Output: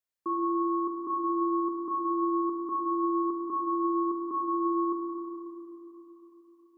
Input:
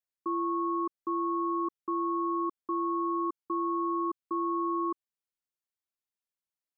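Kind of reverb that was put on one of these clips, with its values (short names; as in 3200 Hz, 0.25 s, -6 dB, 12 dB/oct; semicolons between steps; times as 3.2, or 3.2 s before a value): Schroeder reverb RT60 3.9 s, combs from 28 ms, DRR -1.5 dB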